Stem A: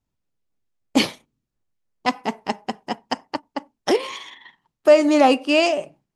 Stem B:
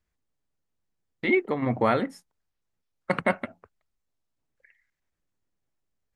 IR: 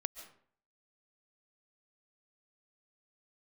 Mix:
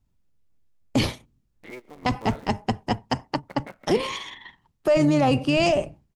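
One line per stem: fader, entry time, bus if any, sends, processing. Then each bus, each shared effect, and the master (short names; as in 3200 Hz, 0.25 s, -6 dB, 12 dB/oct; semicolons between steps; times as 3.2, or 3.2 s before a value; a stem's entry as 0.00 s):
+1.5 dB, 0.00 s, no send, octaver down 1 oct, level -6 dB; low shelf 160 Hz +11.5 dB
-18.5 dB, 0.40 s, send -11.5 dB, cycle switcher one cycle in 3, muted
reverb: on, RT60 0.55 s, pre-delay 0.1 s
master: limiter -12 dBFS, peak gain reduction 11.5 dB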